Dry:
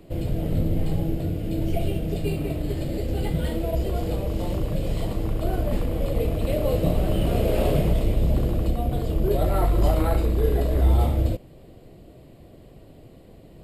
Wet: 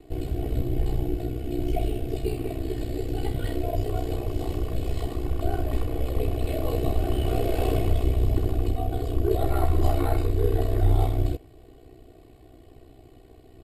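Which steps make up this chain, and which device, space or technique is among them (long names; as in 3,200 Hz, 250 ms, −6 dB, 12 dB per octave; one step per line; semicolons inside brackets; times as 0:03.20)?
ring-modulated robot voice (ring modulation 31 Hz; comb filter 2.7 ms, depth 73%)
level −1.5 dB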